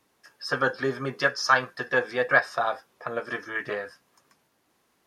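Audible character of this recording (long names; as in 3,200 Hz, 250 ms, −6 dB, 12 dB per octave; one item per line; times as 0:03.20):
background noise floor −70 dBFS
spectral slope −3.5 dB per octave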